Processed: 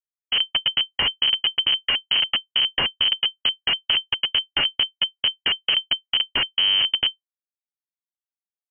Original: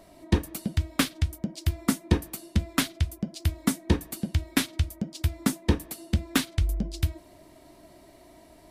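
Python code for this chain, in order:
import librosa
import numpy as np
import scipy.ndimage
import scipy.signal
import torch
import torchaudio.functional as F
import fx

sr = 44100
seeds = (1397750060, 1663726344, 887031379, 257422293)

y = fx.comb(x, sr, ms=0.9, depth=0.98, at=(0.85, 3.35))
y = fx.schmitt(y, sr, flips_db=-27.5)
y = fx.freq_invert(y, sr, carrier_hz=3100)
y = y * 10.0 ** (6.5 / 20.0)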